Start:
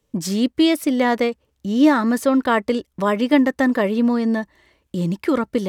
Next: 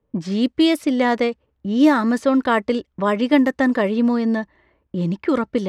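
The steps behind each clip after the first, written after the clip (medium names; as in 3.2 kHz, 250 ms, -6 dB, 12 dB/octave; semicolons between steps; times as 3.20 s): level-controlled noise filter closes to 1.3 kHz, open at -12 dBFS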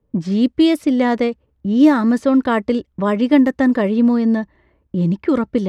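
bass shelf 370 Hz +8.5 dB; trim -2 dB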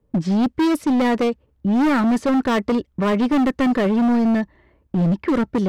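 overload inside the chain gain 16.5 dB; trim +1.5 dB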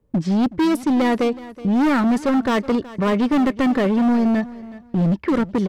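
feedback delay 372 ms, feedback 22%, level -18 dB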